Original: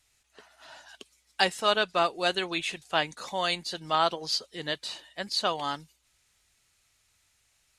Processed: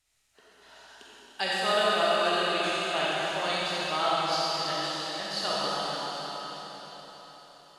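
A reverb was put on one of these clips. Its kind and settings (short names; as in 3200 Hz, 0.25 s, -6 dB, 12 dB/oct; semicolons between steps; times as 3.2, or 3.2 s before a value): digital reverb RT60 4.8 s, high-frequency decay 1×, pre-delay 5 ms, DRR -8 dB; gain -7.5 dB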